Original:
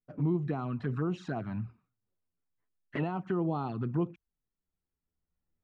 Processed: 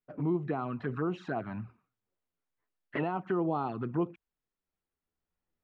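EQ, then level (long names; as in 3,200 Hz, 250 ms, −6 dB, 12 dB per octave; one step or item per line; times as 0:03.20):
bass and treble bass −9 dB, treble −12 dB
+3.5 dB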